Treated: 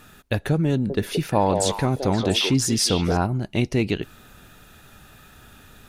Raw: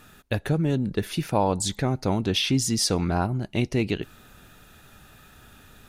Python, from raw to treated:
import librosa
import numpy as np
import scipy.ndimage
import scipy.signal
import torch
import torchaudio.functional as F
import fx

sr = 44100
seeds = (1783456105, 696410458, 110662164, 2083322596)

y = fx.echo_stepped(x, sr, ms=174, hz=520.0, octaves=1.4, feedback_pct=70, wet_db=-1.5, at=(0.72, 3.17))
y = F.gain(torch.from_numpy(y), 2.5).numpy()